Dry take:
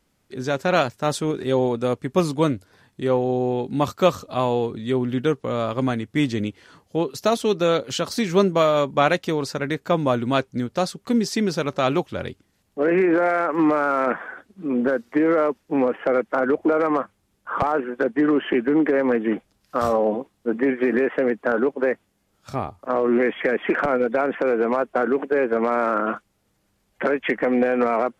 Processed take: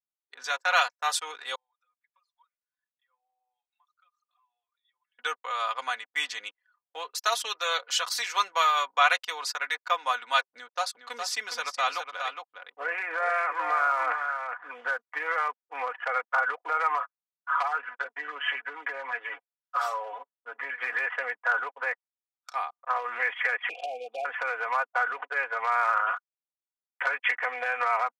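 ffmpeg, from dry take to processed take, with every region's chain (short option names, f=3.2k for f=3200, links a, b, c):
-filter_complex "[0:a]asettb=1/sr,asplit=3[a][b][c];[a]atrim=end=1.554[d];[b]atrim=start=1.55:end=5.19,asetpts=PTS-STARTPTS,afade=t=in:d=0.004:c=qsin,afade=t=out:st=3.636:d=0.004:c=qsin,highpass=1.5k,acompressor=threshold=-48dB:ratio=5:attack=3.2:release=140:knee=1:detection=peak[e];[c]atrim=start=5.186[f];[d][e]acrossfade=d=0.004:c1=hsin:c2=qsin[g];[g][f]acrossfade=d=0.004:c1=qsin:c2=hsin,asettb=1/sr,asplit=3[h][i][j];[h]atrim=end=10.434[k];[i]atrim=start=10.43:end=14.71,asetpts=PTS-STARTPTS,afade=t=in:d=0.004:c=qsin,afade=t=out:st=4.276:d=0.004:c=qsin,tiltshelf=f=640:g=3.5,aecho=1:1:412:0.473,atrim=end_sample=188748[l];[j]atrim=start=14.706[m];[k][l]acrossfade=d=0.004:c1=hsin:c2=qsin[n];[n][m]acrossfade=d=0.004:c1=qsin:c2=hsin,asettb=1/sr,asplit=3[o][p][q];[o]atrim=end=16.954[r];[p]atrim=start=16.95:end=20.74,asetpts=PTS-STARTPTS,afade=t=in:d=0.004:c=qsin,afade=t=out:st=3.786:d=0.004:c=qsin,aecho=1:1:7.1:0.96,atrim=end_sample=167139,acompressor=threshold=-24dB:ratio=2:attack=3.2:release=140:knee=1:detection=peak[s];[q]atrim=start=20.736[t];[r][s]acrossfade=d=0.004:c1=hsin:c2=qsin[u];[u][t]acrossfade=d=0.004:c1=qsin:c2=hsin,asettb=1/sr,asplit=3[v][w][x];[v]atrim=end=23.694[y];[w]atrim=start=23.69:end=24.25,asetpts=PTS-STARTPTS,afade=t=in:d=0.004:c=qsin,afade=t=out:st=0.556:d=0.004:c=qsin,asuperstop=centerf=1400:order=20:qfactor=0.83,acompressor=mode=upward:threshold=-24dB:ratio=2.5:attack=3.2:release=140:knee=2.83:detection=peak[z];[x]atrim=start=24.246[aa];[y][z]acrossfade=d=0.004:c1=hsin:c2=qsin[ab];[ab][aa]acrossfade=d=0.004:c1=qsin:c2=hsin,anlmdn=1.58,highpass=f=930:w=0.5412,highpass=f=930:w=1.3066,aecho=1:1:4.1:0.71"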